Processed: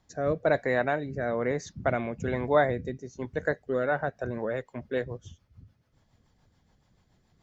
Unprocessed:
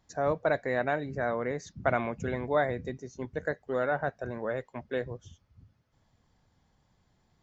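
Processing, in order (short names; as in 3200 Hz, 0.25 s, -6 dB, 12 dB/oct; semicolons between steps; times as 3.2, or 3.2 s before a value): rotary speaker horn 1.1 Hz, later 7 Hz, at 3.61; gain +4.5 dB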